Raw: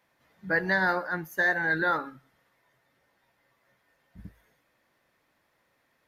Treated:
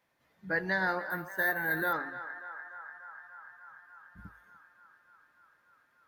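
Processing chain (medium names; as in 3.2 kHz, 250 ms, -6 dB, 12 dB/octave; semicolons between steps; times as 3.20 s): band-passed feedback delay 293 ms, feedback 82%, band-pass 1.2 kHz, level -11.5 dB; 1.10–1.93 s: careless resampling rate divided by 3×, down filtered, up hold; trim -5 dB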